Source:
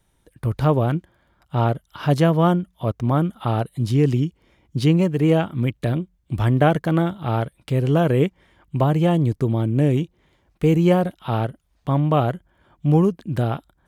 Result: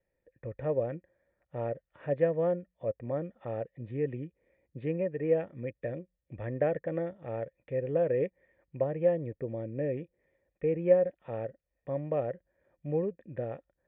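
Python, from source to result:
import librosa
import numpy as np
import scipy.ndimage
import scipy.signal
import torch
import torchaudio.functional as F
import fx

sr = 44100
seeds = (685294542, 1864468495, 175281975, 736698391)

y = fx.formant_cascade(x, sr, vowel='e')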